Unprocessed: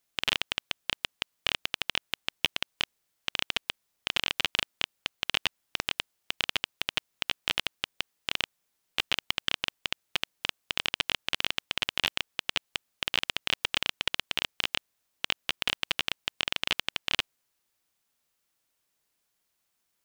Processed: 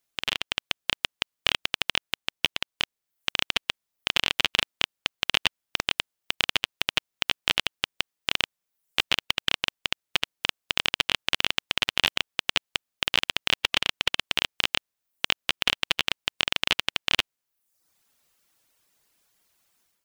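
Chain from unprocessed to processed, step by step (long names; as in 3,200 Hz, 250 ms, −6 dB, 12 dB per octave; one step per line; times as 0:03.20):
reverb reduction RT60 0.68 s
automatic gain control
level −1 dB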